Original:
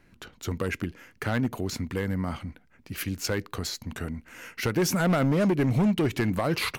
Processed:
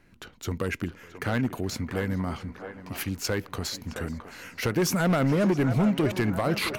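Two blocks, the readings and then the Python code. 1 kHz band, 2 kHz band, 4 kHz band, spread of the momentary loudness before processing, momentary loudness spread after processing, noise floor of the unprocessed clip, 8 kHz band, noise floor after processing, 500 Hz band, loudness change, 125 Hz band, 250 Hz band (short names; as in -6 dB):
+0.5 dB, +0.5 dB, 0.0 dB, 14 LU, 14 LU, -60 dBFS, 0.0 dB, -51 dBFS, +0.5 dB, 0.0 dB, 0.0 dB, 0.0 dB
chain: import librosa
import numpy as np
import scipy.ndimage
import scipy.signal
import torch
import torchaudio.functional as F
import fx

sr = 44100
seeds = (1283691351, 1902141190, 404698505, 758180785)

y = fx.echo_banded(x, sr, ms=667, feedback_pct=65, hz=850.0, wet_db=-7.5)
y = fx.echo_warbled(y, sr, ms=425, feedback_pct=49, rate_hz=2.8, cents=166, wet_db=-24)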